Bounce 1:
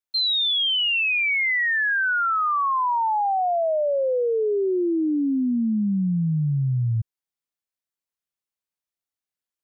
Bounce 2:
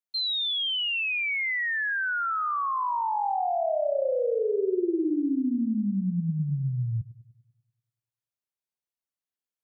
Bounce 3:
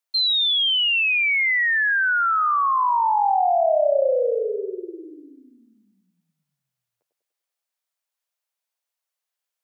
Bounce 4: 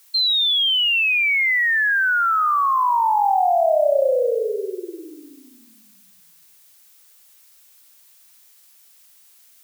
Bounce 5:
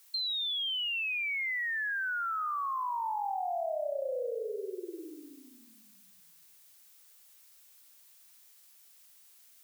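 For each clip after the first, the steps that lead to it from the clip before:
band-limited delay 98 ms, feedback 55%, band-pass 410 Hz, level -3 dB; gain -6 dB
steep high-pass 490 Hz 36 dB/oct; gain +8 dB
added noise blue -54 dBFS; gain +1.5 dB
compressor 2.5:1, threshold -29 dBFS, peak gain reduction 10.5 dB; gain -7 dB

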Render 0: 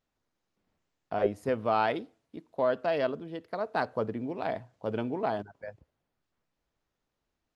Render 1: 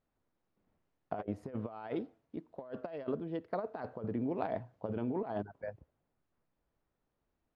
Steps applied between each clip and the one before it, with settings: LPF 1200 Hz 6 dB/oct; negative-ratio compressor -34 dBFS, ratio -0.5; gain -2.5 dB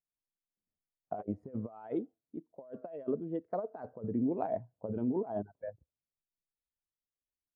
spectral expander 1.5:1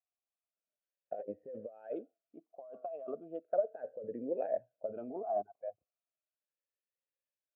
vowel sweep a-e 0.36 Hz; gain +9 dB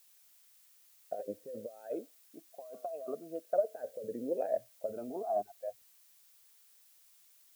added noise blue -65 dBFS; gain +1.5 dB

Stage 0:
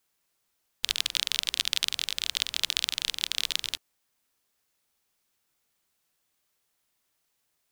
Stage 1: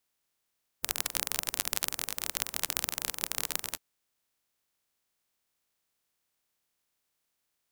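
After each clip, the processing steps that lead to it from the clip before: spectral limiter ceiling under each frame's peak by 26 dB; gain -4 dB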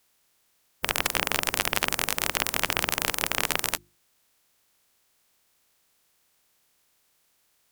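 notches 50/100/150/200/250/300/350 Hz; sine folder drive 11 dB, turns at -2.5 dBFS; gain -2.5 dB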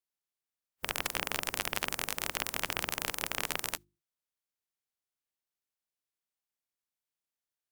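spectral noise reduction 18 dB; gain -8 dB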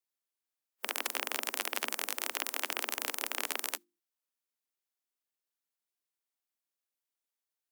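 steep high-pass 220 Hz 96 dB/oct; high shelf 9500 Hz +3.5 dB; gain -1.5 dB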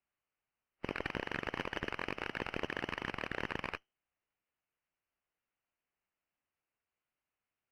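FFT order left unsorted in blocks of 128 samples; inverted band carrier 3100 Hz; running maximum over 3 samples; gain +5 dB

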